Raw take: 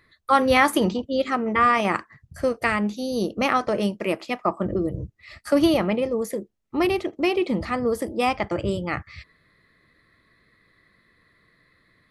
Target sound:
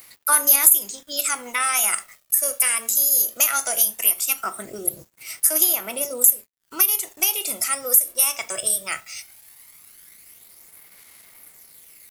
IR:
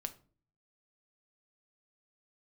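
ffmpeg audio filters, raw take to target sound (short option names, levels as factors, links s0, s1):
-filter_complex "[0:a]aderivative,asetrate=48091,aresample=44100,atempo=0.917004,aexciter=amount=7:drive=8.2:freq=6500,asplit=2[s0][s1];[1:a]atrim=start_sample=2205[s2];[s1][s2]afir=irnorm=-1:irlink=0,volume=2.66[s3];[s0][s3]amix=inputs=2:normalize=0,acompressor=threshold=0.0794:ratio=2.5,acrusher=bits=7:mix=0:aa=0.5,aphaser=in_gain=1:out_gain=1:delay=1.8:decay=0.4:speed=0.18:type=sinusoidal,aeval=exprs='0.562*(cos(1*acos(clip(val(0)/0.562,-1,1)))-cos(1*PI/2))+0.01*(cos(2*acos(clip(val(0)/0.562,-1,1)))-cos(2*PI/2))':c=same,volume=1.5"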